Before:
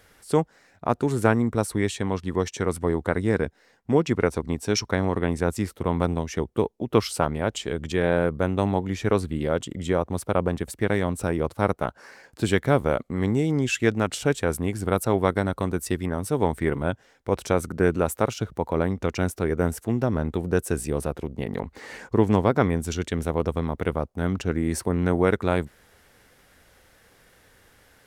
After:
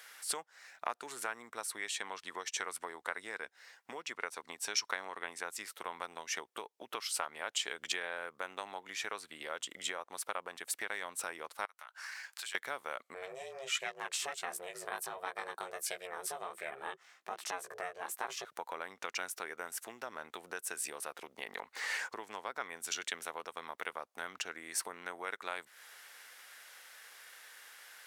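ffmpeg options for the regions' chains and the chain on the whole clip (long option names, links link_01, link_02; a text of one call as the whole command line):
ffmpeg -i in.wav -filter_complex "[0:a]asettb=1/sr,asplit=3[link_01][link_02][link_03];[link_01]atrim=end=11.654[link_04];[link_02]atrim=start=11.65:end=12.55,asetpts=PTS-STARTPTS,afade=type=in:duration=0.004:curve=qsin,afade=type=out:start_time=0.896:duration=0.004:curve=qsin,highpass=1100,acompressor=threshold=-44dB:ratio=12:attack=3.2:release=140:knee=1:detection=peak[link_05];[link_03]atrim=start=12.546[link_06];[link_04][link_05]acrossfade=duration=0.004:curve1=hsin:curve2=qsin[link_07];[link_07][link_06]acrossfade=duration=0.004:curve1=qsin:curve2=hsin,asettb=1/sr,asplit=3[link_08][link_09][link_10];[link_08]atrim=end=13.144[link_11];[link_09]atrim=start=13.14:end=18.45,asetpts=PTS-STARTPTS,afade=type=in:duration=0.004:curve=qsin,afade=type=out:start_time=5.306:duration=0.004:curve=qsin,equalizer=frequency=130:width=0.71:gain=7.5,flanger=delay=15.5:depth=2.7:speed=1.4,aeval=exprs='val(0)*sin(2*PI*270*n/s)':channel_layout=same[link_12];[link_10]atrim=start=18.446[link_13];[link_11][link_12]acrossfade=duration=0.004:curve1=hsin:curve2=qsin[link_14];[link_14][link_13]acrossfade=duration=0.004:curve1=qsin:curve2=hsin,acompressor=threshold=-30dB:ratio=12,highpass=1200,volume=5.5dB" out.wav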